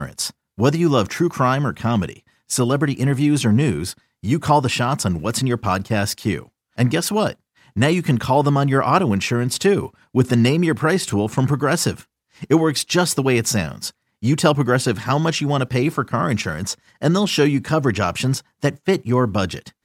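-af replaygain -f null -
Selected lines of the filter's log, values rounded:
track_gain = +0.4 dB
track_peak = 0.554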